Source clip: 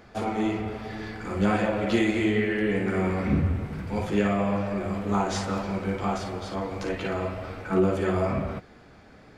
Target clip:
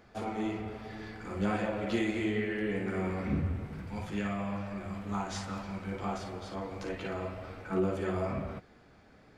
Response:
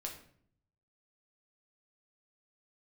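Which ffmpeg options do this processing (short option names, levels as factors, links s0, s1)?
-filter_complex "[0:a]asettb=1/sr,asplit=3[s0][s1][s2];[s0]atrim=end=3.894[s3];[s1]atrim=start=3.89:end=5.92,asetpts=PTS-STARTPTS,afade=t=in:d=0.004:c=qsin,afade=t=out:st=2.026:d=0.004:c=qsin,equalizer=f=440:w=1.2:g=-8[s4];[s2]atrim=start=5.916[s5];[s3][s4]acrossfade=d=0.004:c1=hsin:c2=qsin[s6];[s6][s5]acrossfade=d=0.004:c1=qsin:c2=hsin,volume=0.422"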